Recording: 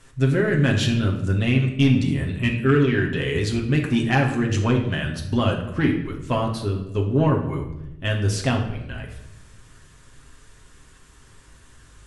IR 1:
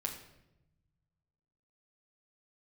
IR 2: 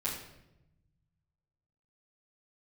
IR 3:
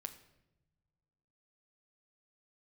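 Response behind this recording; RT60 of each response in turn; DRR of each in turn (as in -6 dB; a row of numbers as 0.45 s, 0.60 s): 1; 0.90 s, 0.90 s, no single decay rate; 0.5 dB, -9.5 dB, 7.0 dB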